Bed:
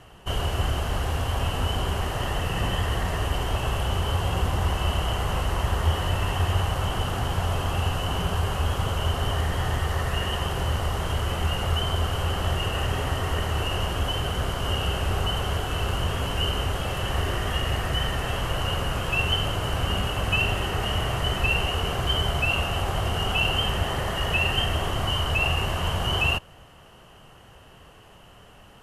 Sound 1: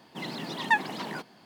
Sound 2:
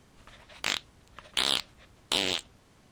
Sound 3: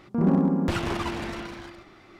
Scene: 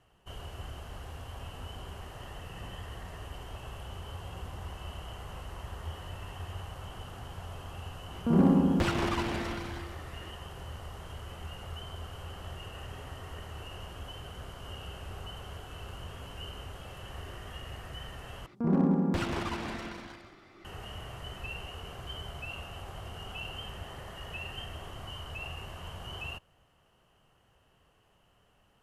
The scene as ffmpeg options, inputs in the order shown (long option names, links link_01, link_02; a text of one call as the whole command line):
ffmpeg -i bed.wav -i cue0.wav -i cue1.wav -i cue2.wav -filter_complex "[3:a]asplit=2[link_01][link_02];[0:a]volume=-17dB[link_03];[link_02]aecho=1:1:188:0.266[link_04];[link_03]asplit=2[link_05][link_06];[link_05]atrim=end=18.464[link_07];[link_04]atrim=end=2.19,asetpts=PTS-STARTPTS,volume=-5dB[link_08];[link_06]atrim=start=20.646[link_09];[link_01]atrim=end=2.19,asetpts=PTS-STARTPTS,volume=-1.5dB,afade=type=in:duration=0.004:curve=hsin,afade=type=out:start_time=2.186:duration=0.004:curve=hsin,adelay=8120[link_10];[link_07][link_08]acrossfade=duration=0.004:curve1=hsin:curve2=hsin[link_11];[link_11][link_09]acrossfade=duration=0.004:curve1=hsin:curve2=hsin[link_12];[link_12][link_10]amix=inputs=2:normalize=0" out.wav